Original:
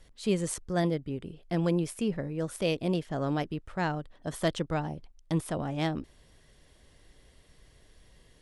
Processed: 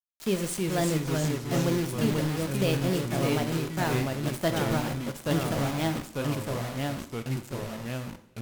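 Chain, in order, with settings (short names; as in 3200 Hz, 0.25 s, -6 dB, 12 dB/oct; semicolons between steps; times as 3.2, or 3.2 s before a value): requantised 6-bit, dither none; echoes that change speed 0.286 s, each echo -2 st, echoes 3; two-slope reverb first 0.56 s, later 3 s, from -22 dB, DRR 8 dB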